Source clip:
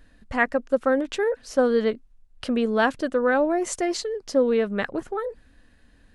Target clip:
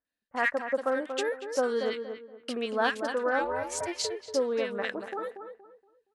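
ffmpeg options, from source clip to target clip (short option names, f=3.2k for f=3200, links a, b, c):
-filter_complex "[0:a]asplit=3[a][b][c];[a]afade=t=out:st=3.39:d=0.02[d];[b]aeval=exprs='val(0)*sin(2*PI*260*n/s)':c=same,afade=t=in:st=3.39:d=0.02,afade=t=out:st=3.86:d=0.02[e];[c]afade=t=in:st=3.86:d=0.02[f];[d][e][f]amix=inputs=3:normalize=0,aeval=exprs='0.447*(cos(1*acos(clip(val(0)/0.447,-1,1)))-cos(1*PI/2))+0.00447*(cos(8*acos(clip(val(0)/0.447,-1,1)))-cos(8*PI/2))':c=same,highpass=f=1k:p=1,acrossover=split=1500[g][h];[h]adelay=50[i];[g][i]amix=inputs=2:normalize=0,agate=range=-24dB:threshold=-42dB:ratio=16:detection=peak,asplit=2[j][k];[k]adelay=235,lowpass=f=1.4k:p=1,volume=-7dB,asplit=2[l][m];[m]adelay=235,lowpass=f=1.4k:p=1,volume=0.31,asplit=2[n][o];[o]adelay=235,lowpass=f=1.4k:p=1,volume=0.31,asplit=2[p][q];[q]adelay=235,lowpass=f=1.4k:p=1,volume=0.31[r];[l][n][p][r]amix=inputs=4:normalize=0[s];[j][s]amix=inputs=2:normalize=0"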